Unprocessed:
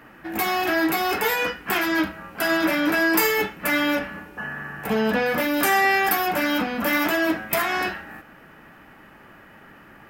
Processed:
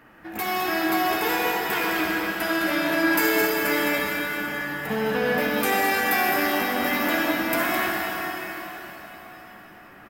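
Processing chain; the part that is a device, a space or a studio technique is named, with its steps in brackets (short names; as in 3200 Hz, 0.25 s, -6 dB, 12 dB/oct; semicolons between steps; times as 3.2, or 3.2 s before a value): cave (echo 0.21 s -8 dB; reverb RT60 4.2 s, pre-delay 54 ms, DRR -1.5 dB); gain -5 dB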